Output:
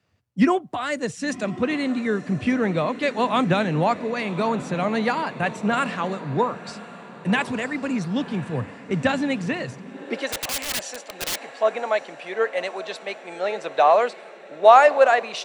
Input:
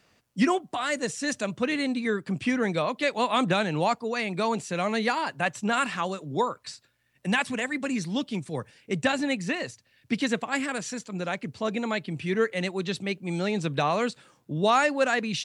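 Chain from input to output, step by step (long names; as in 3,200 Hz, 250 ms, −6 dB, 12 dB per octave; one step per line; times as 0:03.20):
in parallel at 0 dB: downward compressor, threshold −36 dBFS, peak gain reduction 17.5 dB
on the sum: high-shelf EQ 3,500 Hz −8.5 dB
on a send: feedback delay with all-pass diffusion 1,086 ms, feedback 62%, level −13 dB
on the sum: high-pass filter sweep 85 Hz → 630 Hz, 0:09.58–0:10.27
0:10.32–0:11.54: wrap-around overflow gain 23.5 dB
multiband upward and downward expander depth 40%
level +1.5 dB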